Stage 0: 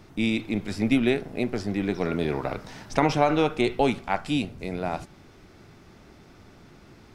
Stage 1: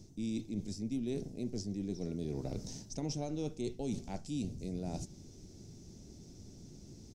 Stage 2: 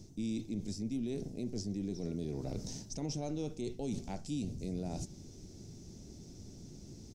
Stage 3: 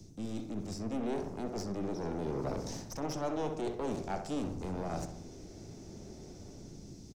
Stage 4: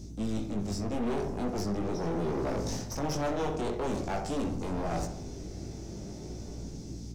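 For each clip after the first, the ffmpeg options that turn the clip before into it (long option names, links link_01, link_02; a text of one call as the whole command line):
ffmpeg -i in.wav -af "firequalizer=gain_entry='entry(190,0);entry(1200,-26);entry(6000,8);entry(11000,-5)':delay=0.05:min_phase=1,areverse,acompressor=threshold=-35dB:ratio=5,areverse" out.wav
ffmpeg -i in.wav -af "alimiter=level_in=7dB:limit=-24dB:level=0:latency=1:release=42,volume=-7dB,volume=2dB" out.wav
ffmpeg -i in.wav -filter_complex "[0:a]aeval=exprs='clip(val(0),-1,0.00891)':channel_layout=same,acrossover=split=150|430|2200[link_01][link_02][link_03][link_04];[link_03]dynaudnorm=framelen=150:gausssize=9:maxgain=11dB[link_05];[link_01][link_02][link_05][link_04]amix=inputs=4:normalize=0,asplit=2[link_06][link_07];[link_07]adelay=64,lowpass=frequency=2200:poles=1,volume=-7dB,asplit=2[link_08][link_09];[link_09]adelay=64,lowpass=frequency=2200:poles=1,volume=0.55,asplit=2[link_10][link_11];[link_11]adelay=64,lowpass=frequency=2200:poles=1,volume=0.55,asplit=2[link_12][link_13];[link_13]adelay=64,lowpass=frequency=2200:poles=1,volume=0.55,asplit=2[link_14][link_15];[link_15]adelay=64,lowpass=frequency=2200:poles=1,volume=0.55,asplit=2[link_16][link_17];[link_17]adelay=64,lowpass=frequency=2200:poles=1,volume=0.55,asplit=2[link_18][link_19];[link_19]adelay=64,lowpass=frequency=2200:poles=1,volume=0.55[link_20];[link_06][link_08][link_10][link_12][link_14][link_16][link_18][link_20]amix=inputs=8:normalize=0" out.wav
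ffmpeg -i in.wav -af "flanger=delay=18:depth=2.9:speed=0.44,asoftclip=type=hard:threshold=-36dB,aeval=exprs='val(0)+0.00251*(sin(2*PI*60*n/s)+sin(2*PI*2*60*n/s)/2+sin(2*PI*3*60*n/s)/3+sin(2*PI*4*60*n/s)/4+sin(2*PI*5*60*n/s)/5)':channel_layout=same,volume=9dB" out.wav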